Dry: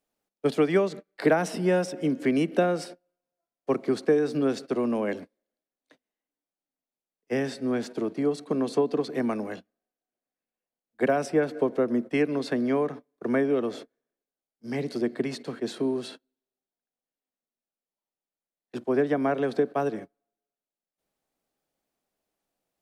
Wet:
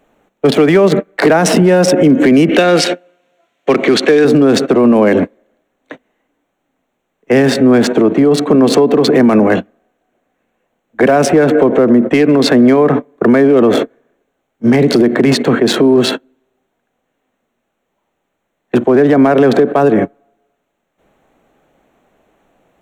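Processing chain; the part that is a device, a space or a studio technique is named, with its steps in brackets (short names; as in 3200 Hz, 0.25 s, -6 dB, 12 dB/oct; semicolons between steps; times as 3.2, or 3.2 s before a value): Wiener smoothing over 9 samples; 2.49–4.25 weighting filter D; loud club master (compressor 2:1, threshold -25 dBFS, peak gain reduction 5.5 dB; hard clip -18.5 dBFS, distortion -26 dB; maximiser +30.5 dB); gain -1 dB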